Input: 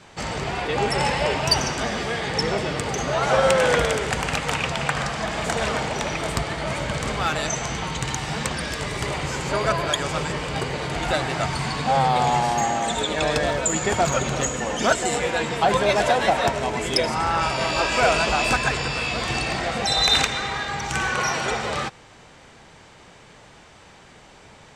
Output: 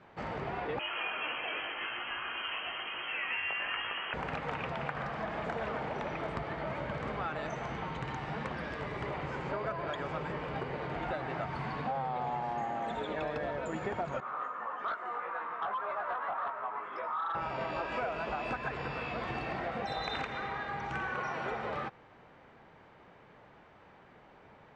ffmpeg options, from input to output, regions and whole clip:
ffmpeg -i in.wav -filter_complex "[0:a]asettb=1/sr,asplit=3[link_01][link_02][link_03];[link_01]atrim=end=0.794[link_04];[link_02]atrim=start=0.79:end=4.14,asetpts=PTS-STARTPTS,afade=type=in:duration=0.004:curve=qsin,afade=type=out:start_time=3.346:duration=0.004:curve=qsin,highpass=46,asplit=2[link_05][link_06];[link_06]adelay=19,volume=-5dB[link_07];[link_05][link_07]amix=inputs=2:normalize=0,atrim=end_sample=147735,lowpass=frequency=2800:width_type=q:width=0.5098,lowpass=frequency=2800:width_type=q:width=0.6013,lowpass=frequency=2800:width_type=q:width=0.9,lowpass=frequency=2800:width_type=q:width=2.563,afreqshift=-3300[link_08];[link_03]atrim=start=4.136[link_09];[link_04][link_08]acrossfade=duration=0.004:curve1=hsin:curve2=qsin[link_10];[link_10][link_09]acrossfade=duration=0.004:curve1=qsin:curve2=hsin,asettb=1/sr,asplit=3[link_11][link_12][link_13];[link_11]atrim=end=14.204[link_14];[link_12]atrim=start=14.2:end=17.35,asetpts=PTS-STARTPTS,afade=type=in:duration=0.004:curve=qsin,afade=type=out:start_time=3.146:duration=0.004:curve=qsin,flanger=delay=16:depth=3.3:speed=1.7,bandpass=frequency=1200:width_type=q:width=7.2,aeval=exprs='0.112*sin(PI/2*3.16*val(0)/0.112)':channel_layout=same[link_15];[link_13]atrim=start=17.346[link_16];[link_14][link_15]acrossfade=duration=0.004:curve1=hsin:curve2=qsin[link_17];[link_17][link_16]acrossfade=duration=0.004:curve1=qsin:curve2=hsin,lowpass=1800,lowshelf=frequency=100:gain=-9,acompressor=threshold=-25dB:ratio=6,volume=-7dB" out.wav

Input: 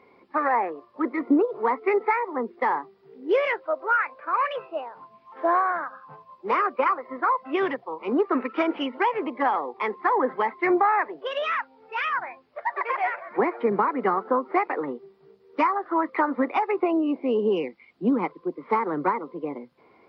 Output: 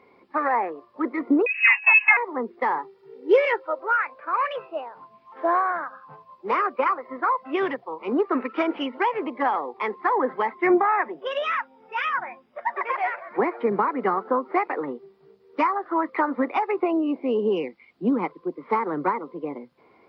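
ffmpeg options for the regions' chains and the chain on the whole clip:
ffmpeg -i in.wav -filter_complex "[0:a]asettb=1/sr,asplit=3[link_01][link_02][link_03];[link_01]atrim=end=1.464[link_04];[link_02]atrim=start=1.46:end=2.17,asetpts=PTS-STARTPTS,afade=type=in:duration=0.004:curve=qsin,afade=type=out:start_time=0.706:duration=0.004:curve=qsin,acontrast=64,lowpass=frequency=2600:width_type=q:width=0.5098,lowpass=frequency=2600:width_type=q:width=0.6013,lowpass=frequency=2600:width_type=q:width=0.9,lowpass=frequency=2600:width_type=q:width=2.563,afreqshift=-3000,highpass=frequency=800:width=0.5412,highpass=frequency=800:width=1.3066[link_05];[link_03]atrim=start=2.166[link_06];[link_04][link_05]acrossfade=duration=0.004:curve1=hsin:curve2=qsin[link_07];[link_07][link_06]acrossfade=duration=0.004:curve1=qsin:curve2=hsin,asettb=1/sr,asplit=3[link_08][link_09][link_10];[link_08]atrim=end=2.784[link_11];[link_09]atrim=start=2.78:end=3.79,asetpts=PTS-STARTPTS,afade=type=in:duration=0.004:curve=qsin,afade=type=out:start_time=1.006:duration=0.004:curve=qsin,highpass=120,aecho=1:1:2.2:0.86,atrim=end_sample=44541[link_12];[link_10]atrim=start=3.786[link_13];[link_11][link_12]acrossfade=duration=0.004:curve1=hsin:curve2=qsin[link_14];[link_14][link_13]acrossfade=duration=0.004:curve1=qsin:curve2=hsin,asettb=1/sr,asplit=3[link_15][link_16][link_17];[link_15]atrim=end=10.554[link_18];[link_16]atrim=start=10.55:end=12.92,asetpts=PTS-STARTPTS,afade=type=in:duration=0.004:curve=qsin,afade=type=out:start_time=2.366:duration=0.004:curve=qsin,asuperstop=centerf=4300:order=8:qfactor=5.7,equalizer=frequency=230:width=6.2:gain=14,aecho=1:1:5.5:0.34,atrim=end_sample=104517[link_19];[link_17]atrim=start=12.916[link_20];[link_18][link_19]acrossfade=duration=0.004:curve1=hsin:curve2=qsin[link_21];[link_21][link_20]acrossfade=duration=0.004:curve1=qsin:curve2=hsin" out.wav

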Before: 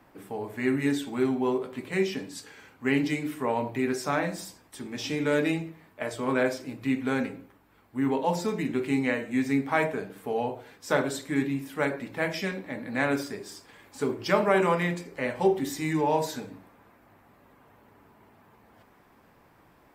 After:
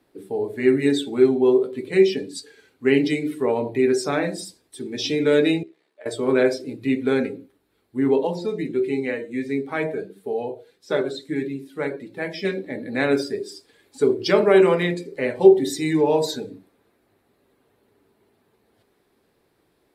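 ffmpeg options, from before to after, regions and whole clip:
ffmpeg -i in.wav -filter_complex "[0:a]asettb=1/sr,asplit=3[link_01][link_02][link_03];[link_01]atrim=end=5.634[link_04];[link_02]atrim=start=5.63:end=6.06,asetpts=PTS-STARTPTS,afade=type=in:duration=0.004:curve=qsin,afade=type=out:start_time=0.426:duration=0.004:curve=qsin,acompressor=threshold=-40dB:ratio=2.5:attack=3.2:release=140:knee=1:detection=peak,tremolo=f=68:d=0.667,highpass=400,lowpass=7300[link_05];[link_03]atrim=start=6.056[link_06];[link_04][link_05]acrossfade=duration=0.004:curve1=hsin:curve2=qsin[link_07];[link_07][link_06]acrossfade=duration=0.004:curve1=qsin:curve2=hsin,asettb=1/sr,asplit=3[link_08][link_09][link_10];[link_08]atrim=end=8.274[link_11];[link_09]atrim=start=8.27:end=12.45,asetpts=PTS-STARTPTS,afade=type=in:duration=0.004:curve=qsin,afade=type=out:start_time=4.176:duration=0.004:curve=qsin,acrossover=split=6200[link_12][link_13];[link_13]acompressor=threshold=-51dB:ratio=4:attack=1:release=60[link_14];[link_12][link_14]amix=inputs=2:normalize=0,flanger=delay=5:depth=1.3:regen=61:speed=1.5:shape=sinusoidal[link_15];[link_10]atrim=start=12.446[link_16];[link_11][link_15]acrossfade=duration=0.004:curve1=hsin:curve2=qsin[link_17];[link_17][link_16]acrossfade=duration=0.004:curve1=qsin:curve2=hsin,afftdn=noise_reduction=12:noise_floor=-41,equalizer=frequency=400:width_type=o:width=0.67:gain=10,equalizer=frequency=1000:width_type=o:width=0.67:gain=-5,equalizer=frequency=4000:width_type=o:width=0.67:gain=11,equalizer=frequency=10000:width_type=o:width=0.67:gain=11,volume=2.5dB" out.wav

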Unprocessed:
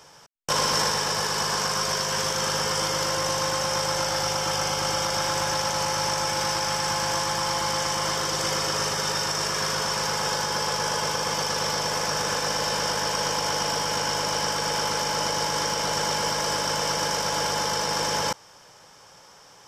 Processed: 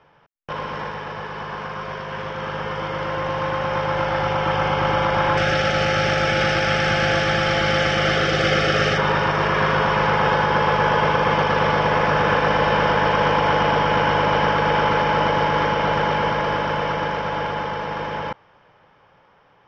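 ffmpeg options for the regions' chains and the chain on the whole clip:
ffmpeg -i in.wav -filter_complex "[0:a]asettb=1/sr,asplit=3[link_01][link_02][link_03];[link_01]atrim=end=5.374[link_04];[link_02]atrim=start=5.37:end=8.98,asetpts=PTS-STARTPTS,afade=type=in:duration=0.004:curve=qsin,afade=type=out:start_time=3.606:duration=0.004:curve=qsin,asuperstop=centerf=980:order=4:qfactor=2.3,aemphasis=mode=production:type=75kf[link_05];[link_03]atrim=start=8.976[link_06];[link_04][link_05]acrossfade=duration=0.004:curve1=hsin:curve2=qsin[link_07];[link_07][link_06]acrossfade=duration=0.004:curve1=qsin:curve2=hsin,lowpass=frequency=2800:width=0.5412,lowpass=frequency=2800:width=1.3066,lowshelf=frequency=210:gain=3.5,dynaudnorm=framelen=710:gausssize=11:maxgain=15dB,volume=-3.5dB" out.wav

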